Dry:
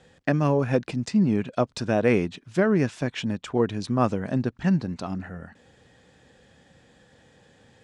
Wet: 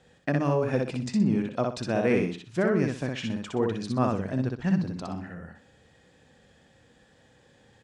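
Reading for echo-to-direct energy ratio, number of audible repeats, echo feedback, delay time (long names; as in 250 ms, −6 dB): −2.5 dB, 3, 27%, 62 ms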